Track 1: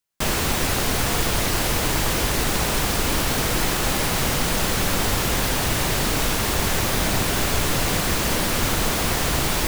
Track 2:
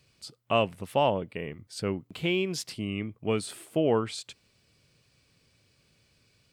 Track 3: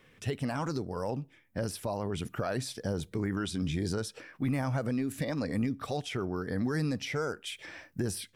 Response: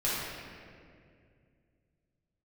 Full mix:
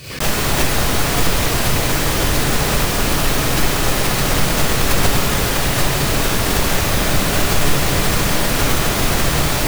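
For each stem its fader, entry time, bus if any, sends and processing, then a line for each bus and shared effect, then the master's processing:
0.0 dB, 0.00 s, send -9 dB, dry
-11.5 dB, 0.00 s, no send, negative-ratio compressor -38 dBFS
-10.0 dB, 0.10 s, no send, dry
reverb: on, RT60 2.2 s, pre-delay 5 ms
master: backwards sustainer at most 93 dB/s

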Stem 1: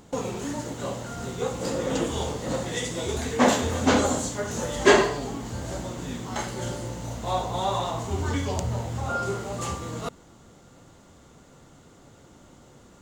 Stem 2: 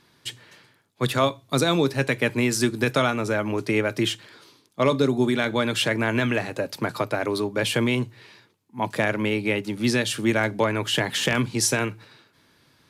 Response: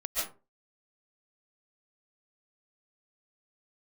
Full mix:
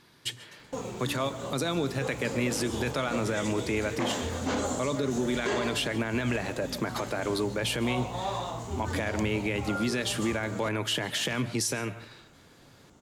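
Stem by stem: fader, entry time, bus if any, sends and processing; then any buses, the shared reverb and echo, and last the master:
-6.0 dB, 0.60 s, no send, dry
0.0 dB, 0.00 s, send -22 dB, compressor 2:1, threshold -27 dBFS, peak gain reduction 7 dB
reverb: on, RT60 0.35 s, pre-delay 0.1 s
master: limiter -19.5 dBFS, peak gain reduction 10.5 dB

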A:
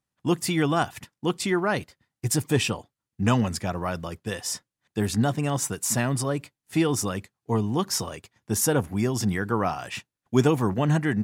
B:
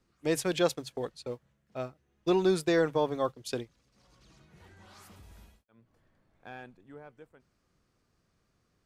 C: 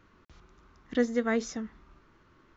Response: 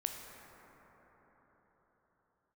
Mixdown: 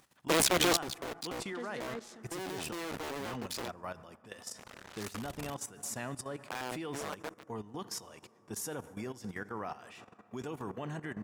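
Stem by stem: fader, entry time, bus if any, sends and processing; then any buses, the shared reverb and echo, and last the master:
-11.0 dB, 0.00 s, send -7 dB, upward compressor, threshold -28 dBFS; high shelf 4000 Hz -3 dB
+1.0 dB, 0.05 s, no send, cycle switcher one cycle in 2, muted; low shelf 220 Hz +2.5 dB; fuzz box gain 48 dB, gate -52 dBFS; auto duck -12 dB, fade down 1.10 s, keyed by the first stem
-7.5 dB, 0.60 s, send -13.5 dB, high shelf 9000 Hz +12 dB; noise-modulated delay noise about 1200 Hz, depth 0.032 ms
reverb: on, pre-delay 12 ms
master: low shelf 220 Hz -11 dB; level quantiser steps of 13 dB

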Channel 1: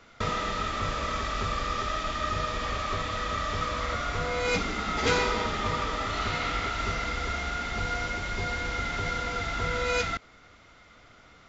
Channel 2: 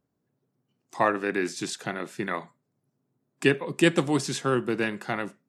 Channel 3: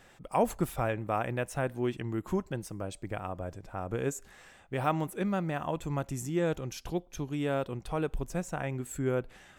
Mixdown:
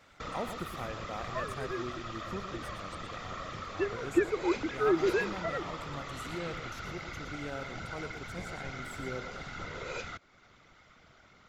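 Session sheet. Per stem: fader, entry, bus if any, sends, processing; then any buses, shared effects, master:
-5.5 dB, 0.00 s, no send, no echo send, compressor 1.5:1, threshold -43 dBFS, peak gain reduction 8.5 dB; whisperiser
3.91 s -13 dB -> 4.6 s -0.5 dB, 0.35 s, no send, no echo send, sine-wave speech
-10.5 dB, 0.00 s, no send, echo send -9.5 dB, HPF 87 Hz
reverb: off
echo: echo 0.117 s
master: dry

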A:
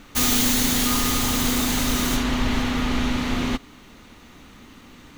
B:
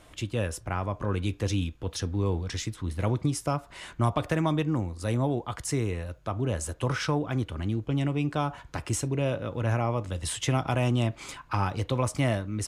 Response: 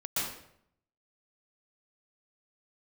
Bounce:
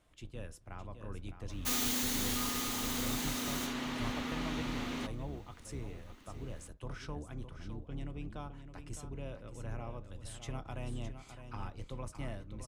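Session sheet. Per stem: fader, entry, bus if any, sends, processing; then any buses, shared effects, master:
-3.0 dB, 1.50 s, no send, no echo send, HPF 190 Hz; auto duck -10 dB, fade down 1.90 s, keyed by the second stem
-17.5 dB, 0.00 s, no send, echo send -9.5 dB, octaver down 2 oct, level +2 dB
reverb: off
echo: echo 0.611 s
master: dry

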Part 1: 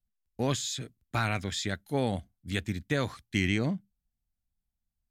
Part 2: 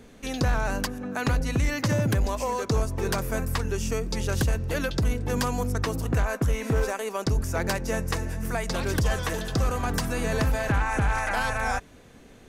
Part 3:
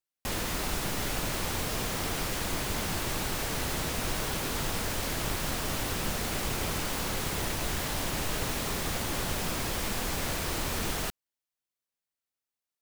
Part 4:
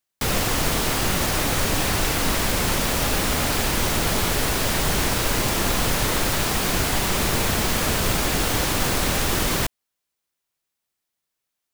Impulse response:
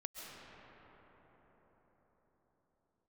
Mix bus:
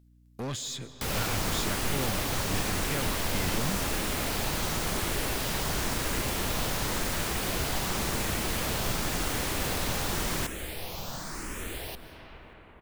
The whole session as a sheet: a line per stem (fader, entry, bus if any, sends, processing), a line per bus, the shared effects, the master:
-1.0 dB, 0.00 s, send -8 dB, hum 60 Hz, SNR 27 dB; soft clip -31 dBFS, distortion -6 dB
off
-5.5 dB, 0.85 s, send -4 dB, endless phaser +0.92 Hz
-9.0 dB, 0.80 s, no send, dry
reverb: on, pre-delay 95 ms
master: mismatched tape noise reduction encoder only

